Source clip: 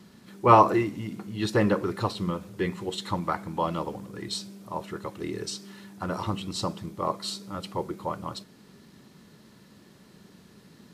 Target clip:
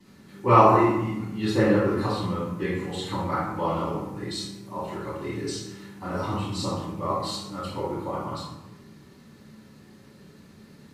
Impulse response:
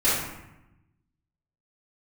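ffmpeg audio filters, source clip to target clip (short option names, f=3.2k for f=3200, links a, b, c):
-filter_complex "[1:a]atrim=start_sample=2205[a];[0:a][a]afir=irnorm=-1:irlink=0,volume=-13.5dB"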